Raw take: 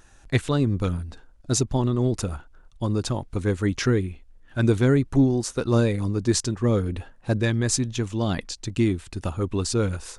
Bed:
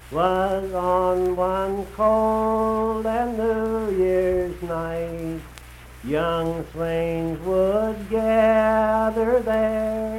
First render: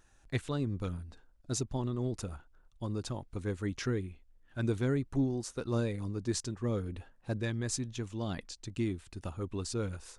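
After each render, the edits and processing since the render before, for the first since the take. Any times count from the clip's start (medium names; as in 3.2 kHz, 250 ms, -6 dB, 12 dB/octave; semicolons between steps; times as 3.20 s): trim -11.5 dB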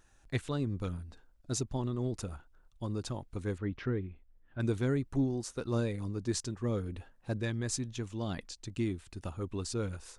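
3.58–4.60 s: distance through air 360 m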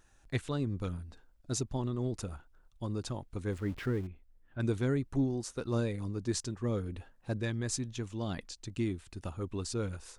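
3.52–4.07 s: jump at every zero crossing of -46.5 dBFS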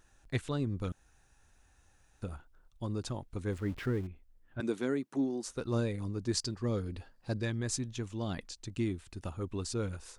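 0.92–2.22 s: room tone; 4.60–5.45 s: high-pass 200 Hz 24 dB/octave; 6.37–7.44 s: peaking EQ 4.7 kHz +14.5 dB 0.25 oct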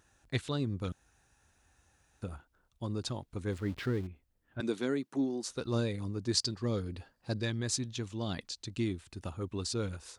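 high-pass 57 Hz; dynamic bell 4.1 kHz, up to +7 dB, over -59 dBFS, Q 1.5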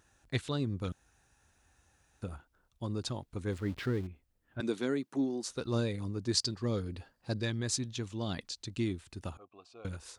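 9.37–9.85 s: vowel filter a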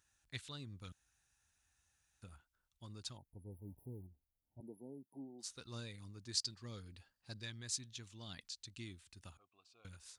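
3.17–5.39 s: spectral selection erased 950–9700 Hz; amplifier tone stack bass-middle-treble 5-5-5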